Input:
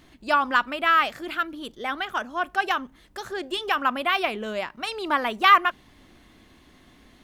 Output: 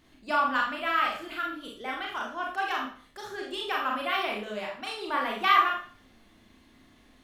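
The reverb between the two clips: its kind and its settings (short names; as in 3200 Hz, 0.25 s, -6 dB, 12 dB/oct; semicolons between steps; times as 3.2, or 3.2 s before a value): Schroeder reverb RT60 0.44 s, combs from 27 ms, DRR -1.5 dB; gain -8.5 dB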